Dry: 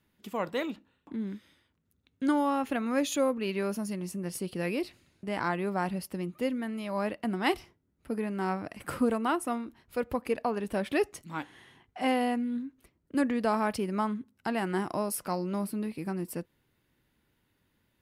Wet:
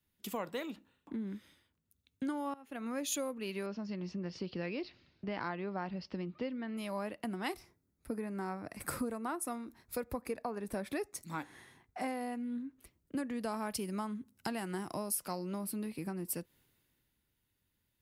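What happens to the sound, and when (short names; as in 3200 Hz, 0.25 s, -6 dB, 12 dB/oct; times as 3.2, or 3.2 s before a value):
2.54–2.99 fade in quadratic, from -19 dB
3.66–6.77 steep low-pass 5300 Hz 48 dB/oct
7.48–12.32 bell 3000 Hz -12.5 dB 0.23 oct
13.3–15.11 tone controls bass +3 dB, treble +5 dB
whole clip: high shelf 5900 Hz +7.5 dB; compressor 5:1, threshold -38 dBFS; three-band expander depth 40%; gain +2 dB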